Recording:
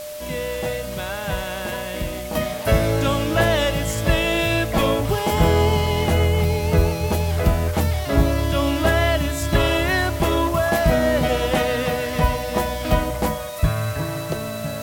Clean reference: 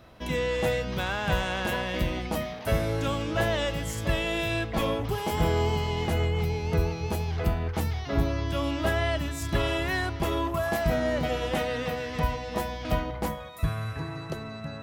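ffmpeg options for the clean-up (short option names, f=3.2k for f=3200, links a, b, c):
-af "bandreject=f=600:w=30,afwtdn=0.011,asetnsamples=n=441:p=0,asendcmd='2.35 volume volume -8dB',volume=0dB"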